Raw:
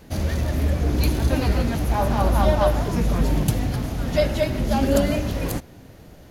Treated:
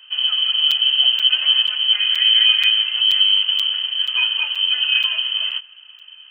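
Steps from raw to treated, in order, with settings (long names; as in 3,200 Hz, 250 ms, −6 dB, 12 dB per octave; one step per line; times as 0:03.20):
low-shelf EQ 180 Hz +5 dB
phaser with its sweep stopped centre 810 Hz, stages 6
voice inversion scrambler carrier 3,100 Hz
regular buffer underruns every 0.48 s, samples 256, zero, from 0:00.71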